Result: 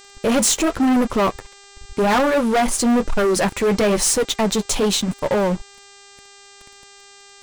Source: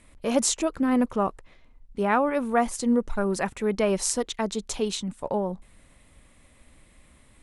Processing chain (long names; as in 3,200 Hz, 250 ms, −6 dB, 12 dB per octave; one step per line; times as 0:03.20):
flanger 0.96 Hz, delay 6.1 ms, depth 5.6 ms, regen −43%
leveller curve on the samples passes 5
hum with harmonics 400 Hz, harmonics 21, −45 dBFS −1 dB per octave
level −1 dB